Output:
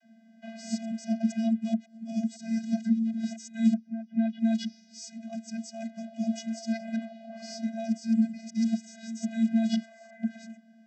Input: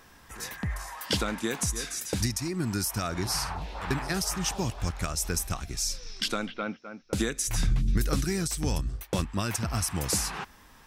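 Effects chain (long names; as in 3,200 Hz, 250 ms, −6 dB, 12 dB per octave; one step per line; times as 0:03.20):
played backwards from end to start
channel vocoder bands 32, square 225 Hz
phaser with its sweep stopped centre 300 Hz, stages 6
one half of a high-frequency compander decoder only
level +5.5 dB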